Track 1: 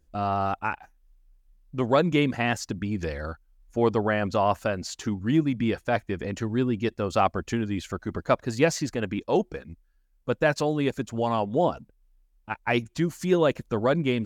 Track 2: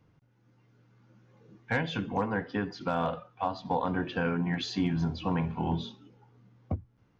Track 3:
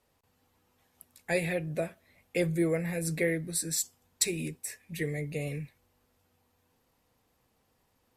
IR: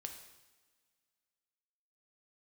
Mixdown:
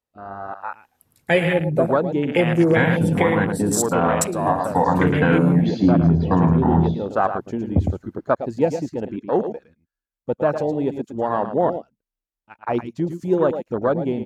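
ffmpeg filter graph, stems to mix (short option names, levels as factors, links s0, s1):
-filter_complex "[0:a]highpass=f=200:p=1,volume=0.335,asplit=2[s0][s1];[s1]volume=0.398[s2];[1:a]adelay=1050,volume=0.841,asplit=3[s3][s4][s5];[s4]volume=0.422[s6];[s5]volume=0.668[s7];[2:a]volume=0.944,asplit=3[s8][s9][s10];[s9]volume=0.119[s11];[s10]volume=0.355[s12];[3:a]atrim=start_sample=2205[s13];[s6][s11]amix=inputs=2:normalize=0[s14];[s14][s13]afir=irnorm=-1:irlink=0[s15];[s2][s7][s12]amix=inputs=3:normalize=0,aecho=0:1:110:1[s16];[s0][s3][s8][s15][s16]amix=inputs=5:normalize=0,afwtdn=0.0224,dynaudnorm=f=430:g=3:m=5.01,alimiter=limit=0.501:level=0:latency=1:release=292"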